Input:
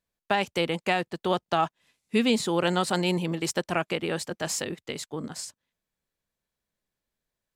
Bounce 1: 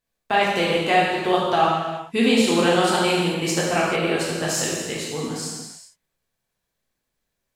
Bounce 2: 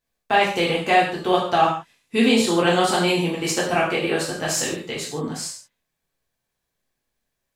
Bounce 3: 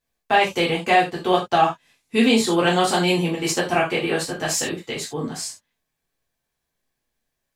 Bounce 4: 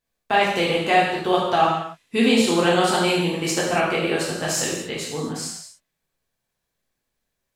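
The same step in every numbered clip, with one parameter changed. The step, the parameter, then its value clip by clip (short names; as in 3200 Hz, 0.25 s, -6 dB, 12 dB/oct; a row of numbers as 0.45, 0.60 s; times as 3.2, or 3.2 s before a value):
non-linear reverb, gate: 0.47, 0.19, 0.11, 0.31 s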